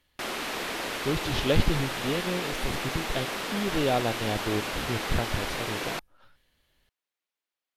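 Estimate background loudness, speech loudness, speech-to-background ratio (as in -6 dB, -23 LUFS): -31.5 LUFS, -31.0 LUFS, 0.5 dB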